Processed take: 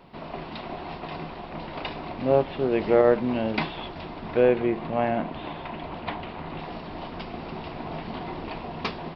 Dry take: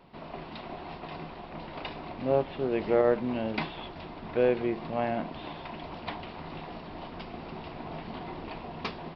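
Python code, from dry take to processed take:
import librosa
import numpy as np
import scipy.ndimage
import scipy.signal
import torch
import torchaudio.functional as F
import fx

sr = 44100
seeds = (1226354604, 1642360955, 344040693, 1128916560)

y = fx.lowpass(x, sr, hz=3500.0, slope=12, at=(4.4, 6.59))
y = y * 10.0 ** (5.0 / 20.0)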